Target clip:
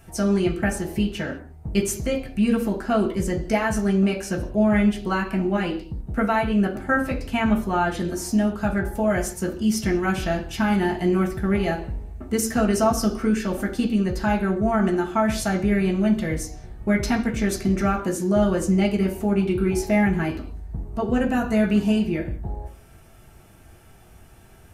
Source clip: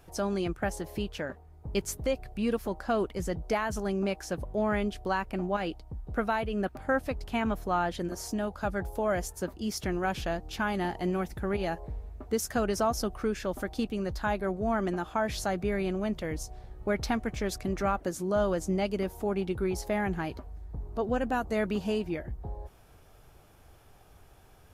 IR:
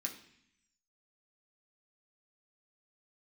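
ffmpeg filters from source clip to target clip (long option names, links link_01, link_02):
-filter_complex "[1:a]atrim=start_sample=2205,afade=type=out:start_time=0.29:duration=0.01,atrim=end_sample=13230,asetrate=48510,aresample=44100[link_01];[0:a][link_01]afir=irnorm=-1:irlink=0,volume=8.5dB"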